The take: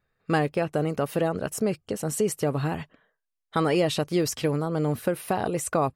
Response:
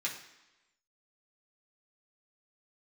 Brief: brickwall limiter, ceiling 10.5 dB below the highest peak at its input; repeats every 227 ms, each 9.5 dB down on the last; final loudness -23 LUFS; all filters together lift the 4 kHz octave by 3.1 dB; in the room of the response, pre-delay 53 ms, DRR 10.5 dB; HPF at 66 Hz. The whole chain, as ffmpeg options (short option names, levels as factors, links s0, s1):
-filter_complex "[0:a]highpass=66,equalizer=f=4000:t=o:g=4,alimiter=limit=0.0891:level=0:latency=1,aecho=1:1:227|454|681|908:0.335|0.111|0.0365|0.012,asplit=2[s0][s1];[1:a]atrim=start_sample=2205,adelay=53[s2];[s1][s2]afir=irnorm=-1:irlink=0,volume=0.2[s3];[s0][s3]amix=inputs=2:normalize=0,volume=2.37"